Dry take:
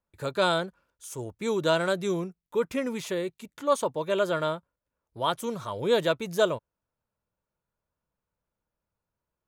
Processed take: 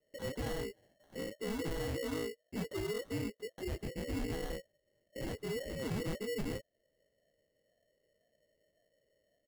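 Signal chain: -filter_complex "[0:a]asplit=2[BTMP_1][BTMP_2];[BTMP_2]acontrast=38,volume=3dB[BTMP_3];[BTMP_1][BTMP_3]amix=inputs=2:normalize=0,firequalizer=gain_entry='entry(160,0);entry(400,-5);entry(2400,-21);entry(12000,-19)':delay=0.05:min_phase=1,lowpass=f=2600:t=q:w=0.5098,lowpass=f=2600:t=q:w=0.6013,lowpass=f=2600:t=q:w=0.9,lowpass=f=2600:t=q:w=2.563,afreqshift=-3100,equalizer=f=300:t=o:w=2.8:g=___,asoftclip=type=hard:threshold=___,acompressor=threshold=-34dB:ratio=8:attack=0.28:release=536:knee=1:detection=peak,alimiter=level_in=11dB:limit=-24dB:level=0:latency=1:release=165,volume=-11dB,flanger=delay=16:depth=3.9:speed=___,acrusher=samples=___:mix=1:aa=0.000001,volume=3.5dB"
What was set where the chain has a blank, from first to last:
-3, -22dB, 1.9, 18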